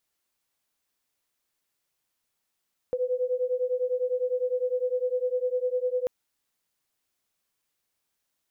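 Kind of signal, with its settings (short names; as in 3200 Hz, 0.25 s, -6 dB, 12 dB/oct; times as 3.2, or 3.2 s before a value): beating tones 497 Hz, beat 9.9 Hz, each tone -27.5 dBFS 3.14 s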